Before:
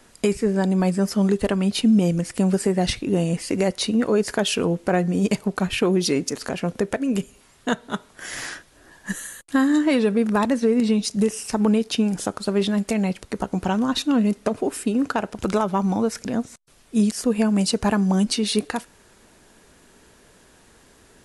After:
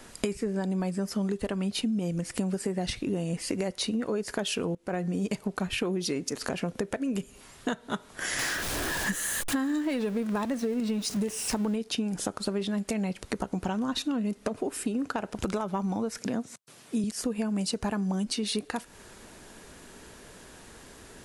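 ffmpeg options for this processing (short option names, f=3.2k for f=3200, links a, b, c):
-filter_complex "[0:a]asettb=1/sr,asplit=3[a][b][c];[a]atrim=end=8.394[d];[b]atrim=start=8.39:end=11.76,asetpts=PTS-STARTPTS,afade=t=in:d=0.004:c=qsin,afade=t=out:st=3.366:d=0.004:c=qsin,aeval=exprs='val(0)+0.5*0.0335*sgn(val(0))':c=same[e];[c]atrim=start=11.756[f];[d][e]acrossfade=d=0.004:c1=hsin:c2=qsin[g];[g][f]acrossfade=d=0.004:c1=qsin:c2=hsin,asettb=1/sr,asplit=3[h][i][j];[h]atrim=end=16.184[k];[i]atrim=start=16.18:end=17.04,asetpts=PTS-STARTPTS,afade=t=in:d=0.004:c=qsin,afade=t=out:st=0.856:d=0.004:c=qsin,highpass=f=110:w=0.5412,highpass=f=110:w=1.3066[l];[j]atrim=start=17.036[m];[k][l]acrossfade=d=0.004:c1=hsin:c2=qsin[n];[n][m]acrossfade=d=0.004:c1=qsin:c2=hsin,asplit=2[o][p];[o]atrim=end=4.75,asetpts=PTS-STARTPTS,afade=t=out:st=4.746:d=0.004:c=hsin:silence=0.1[q];[p]atrim=start=4.75,asetpts=PTS-STARTPTS,afade=t=in:d=0.58:silence=0.1[r];[q][r]concat=n=2:v=0:a=1,acompressor=threshold=-32dB:ratio=6,volume=4dB"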